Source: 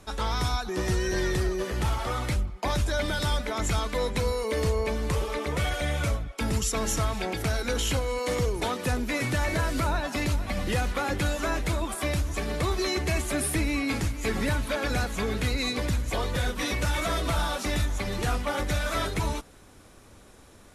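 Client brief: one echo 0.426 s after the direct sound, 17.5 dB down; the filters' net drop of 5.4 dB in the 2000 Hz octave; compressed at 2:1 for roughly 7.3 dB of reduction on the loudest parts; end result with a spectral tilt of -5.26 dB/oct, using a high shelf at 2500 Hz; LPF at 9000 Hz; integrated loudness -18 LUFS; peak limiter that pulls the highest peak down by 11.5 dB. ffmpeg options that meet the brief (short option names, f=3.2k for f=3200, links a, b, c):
-af "lowpass=9k,equalizer=f=2k:t=o:g=-5.5,highshelf=f=2.5k:g=-3.5,acompressor=threshold=-36dB:ratio=2,alimiter=level_in=11dB:limit=-24dB:level=0:latency=1,volume=-11dB,aecho=1:1:426:0.133,volume=25.5dB"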